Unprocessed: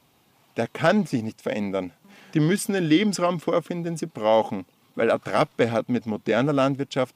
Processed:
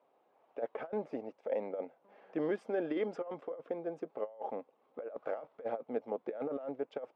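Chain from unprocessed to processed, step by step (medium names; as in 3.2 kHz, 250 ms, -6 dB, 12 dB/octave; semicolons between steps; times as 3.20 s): ladder band-pass 630 Hz, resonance 45%; compressor with a negative ratio -35 dBFS, ratio -0.5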